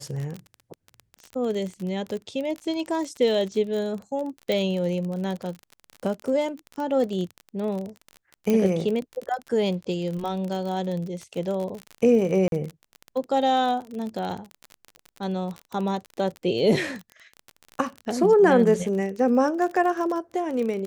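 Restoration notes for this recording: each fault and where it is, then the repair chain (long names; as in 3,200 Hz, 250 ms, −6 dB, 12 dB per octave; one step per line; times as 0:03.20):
surface crackle 34 per second −29 dBFS
0:04.52: click
0:08.50: click −12 dBFS
0:12.48–0:12.52: drop-out 42 ms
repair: click removal
repair the gap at 0:12.48, 42 ms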